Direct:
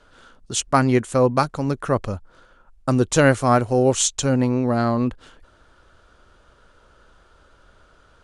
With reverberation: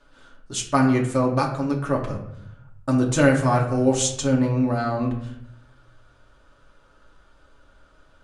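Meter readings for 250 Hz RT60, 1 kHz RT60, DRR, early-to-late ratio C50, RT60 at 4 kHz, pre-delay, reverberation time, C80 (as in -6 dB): 1.1 s, 0.70 s, -1.5 dB, 7.5 dB, 0.50 s, 3 ms, 0.70 s, 10.5 dB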